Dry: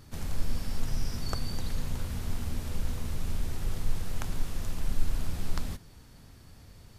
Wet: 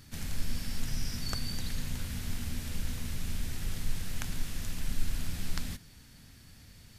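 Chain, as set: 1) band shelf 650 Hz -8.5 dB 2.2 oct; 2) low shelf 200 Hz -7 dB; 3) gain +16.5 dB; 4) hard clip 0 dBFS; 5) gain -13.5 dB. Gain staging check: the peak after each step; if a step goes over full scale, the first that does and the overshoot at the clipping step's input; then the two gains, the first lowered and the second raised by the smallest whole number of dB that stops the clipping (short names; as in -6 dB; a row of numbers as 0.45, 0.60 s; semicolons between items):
-12.0, -18.5, -2.0, -2.0, -15.5 dBFS; no overload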